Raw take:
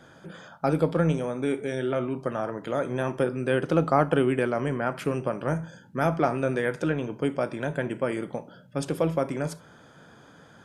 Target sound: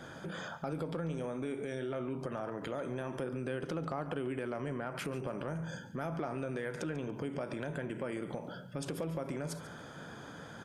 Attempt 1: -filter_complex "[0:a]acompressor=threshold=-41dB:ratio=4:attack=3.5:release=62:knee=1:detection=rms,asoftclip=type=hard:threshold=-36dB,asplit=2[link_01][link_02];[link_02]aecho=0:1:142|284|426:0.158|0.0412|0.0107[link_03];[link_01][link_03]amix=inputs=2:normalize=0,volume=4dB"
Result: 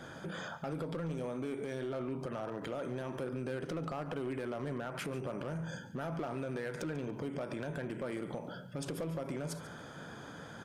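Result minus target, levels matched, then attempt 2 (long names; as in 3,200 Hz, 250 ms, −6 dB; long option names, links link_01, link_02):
hard clipping: distortion +36 dB
-filter_complex "[0:a]acompressor=threshold=-41dB:ratio=4:attack=3.5:release=62:knee=1:detection=rms,asoftclip=type=hard:threshold=-28dB,asplit=2[link_01][link_02];[link_02]aecho=0:1:142|284|426:0.158|0.0412|0.0107[link_03];[link_01][link_03]amix=inputs=2:normalize=0,volume=4dB"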